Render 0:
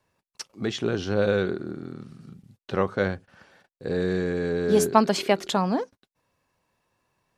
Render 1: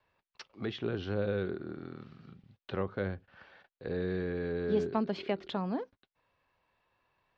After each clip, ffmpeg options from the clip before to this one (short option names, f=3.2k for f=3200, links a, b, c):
-filter_complex "[0:a]lowpass=f=3.9k:w=0.5412,lowpass=f=3.9k:w=1.3066,equalizer=f=190:t=o:w=2.4:g=-8.5,acrossover=split=390[a][b];[b]acompressor=threshold=-47dB:ratio=2[c];[a][c]amix=inputs=2:normalize=0"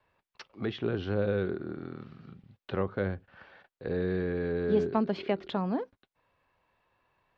-af "highshelf=f=4.4k:g=-8,volume=3.5dB"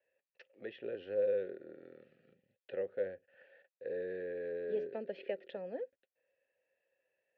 -filter_complex "[0:a]asplit=3[a][b][c];[a]bandpass=f=530:t=q:w=8,volume=0dB[d];[b]bandpass=f=1.84k:t=q:w=8,volume=-6dB[e];[c]bandpass=f=2.48k:t=q:w=8,volume=-9dB[f];[d][e][f]amix=inputs=3:normalize=0,volume=1.5dB"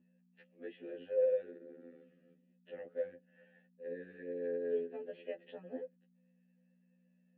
-af "aeval=exprs='val(0)+0.001*(sin(2*PI*60*n/s)+sin(2*PI*2*60*n/s)/2+sin(2*PI*3*60*n/s)/3+sin(2*PI*4*60*n/s)/4+sin(2*PI*5*60*n/s)/5)':c=same,highpass=230,equalizer=f=260:t=q:w=4:g=6,equalizer=f=400:t=q:w=4:g=-6,equalizer=f=630:t=q:w=4:g=-8,equalizer=f=940:t=q:w=4:g=-5,equalizer=f=1.4k:t=q:w=4:g=-9,equalizer=f=2.2k:t=q:w=4:g=-8,lowpass=f=2.9k:w=0.5412,lowpass=f=2.9k:w=1.3066,afftfilt=real='re*2*eq(mod(b,4),0)':imag='im*2*eq(mod(b,4),0)':win_size=2048:overlap=0.75,volume=3.5dB"